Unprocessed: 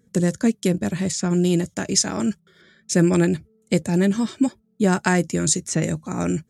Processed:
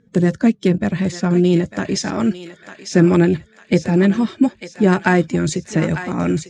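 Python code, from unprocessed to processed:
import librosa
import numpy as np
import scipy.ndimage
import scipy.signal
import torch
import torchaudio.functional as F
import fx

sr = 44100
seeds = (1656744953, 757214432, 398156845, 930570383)

p1 = fx.spec_quant(x, sr, step_db=15)
p2 = scipy.signal.sosfilt(scipy.signal.butter(2, 3500.0, 'lowpass', fs=sr, output='sos'), p1)
p3 = p2 + fx.echo_thinned(p2, sr, ms=899, feedback_pct=49, hz=1100.0, wet_db=-8, dry=0)
y = F.gain(torch.from_numpy(p3), 5.0).numpy()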